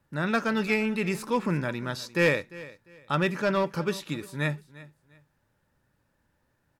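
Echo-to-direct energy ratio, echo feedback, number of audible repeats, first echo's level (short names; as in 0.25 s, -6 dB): -18.5 dB, 26%, 2, -19.0 dB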